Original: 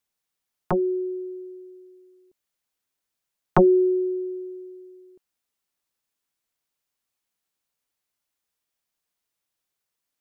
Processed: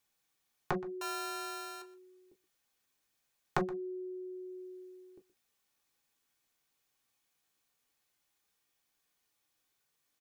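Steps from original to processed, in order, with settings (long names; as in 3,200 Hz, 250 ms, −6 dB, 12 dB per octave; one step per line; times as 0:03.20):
0:01.01–0:01.82: samples sorted by size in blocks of 32 samples
downward compressor 3 to 1, threshold −39 dBFS, peak gain reduction 18.5 dB
slap from a distant wall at 21 metres, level −18 dB
on a send at −1.5 dB: convolution reverb, pre-delay 3 ms
on the sum: level +2 dB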